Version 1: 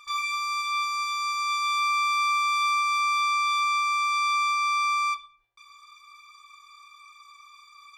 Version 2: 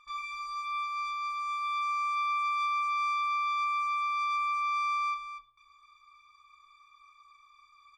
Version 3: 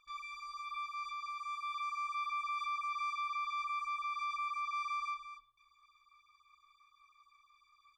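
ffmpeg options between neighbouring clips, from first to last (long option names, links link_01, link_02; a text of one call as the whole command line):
ffmpeg -i in.wav -af "lowpass=frequency=1900:poles=1,lowshelf=frequency=210:gain=8.5,aecho=1:1:241:0.422,volume=-6.5dB" out.wav
ffmpeg -i in.wav -af "afftfilt=real='re*(1-between(b*sr/1024,230*pow(2000/230,0.5+0.5*sin(2*PI*5.8*pts/sr))/1.41,230*pow(2000/230,0.5+0.5*sin(2*PI*5.8*pts/sr))*1.41))':imag='im*(1-between(b*sr/1024,230*pow(2000/230,0.5+0.5*sin(2*PI*5.8*pts/sr))/1.41,230*pow(2000/230,0.5+0.5*sin(2*PI*5.8*pts/sr))*1.41))':win_size=1024:overlap=0.75,volume=-6.5dB" out.wav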